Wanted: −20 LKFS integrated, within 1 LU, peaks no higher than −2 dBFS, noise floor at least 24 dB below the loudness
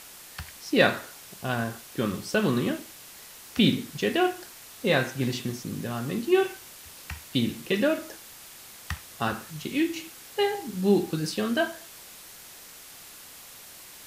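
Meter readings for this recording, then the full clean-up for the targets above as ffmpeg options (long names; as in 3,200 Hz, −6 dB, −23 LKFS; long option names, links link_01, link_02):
background noise floor −47 dBFS; target noise floor −52 dBFS; integrated loudness −27.5 LKFS; sample peak −8.5 dBFS; target loudness −20.0 LKFS
→ -af "afftdn=noise_reduction=6:noise_floor=-47"
-af "volume=7.5dB,alimiter=limit=-2dB:level=0:latency=1"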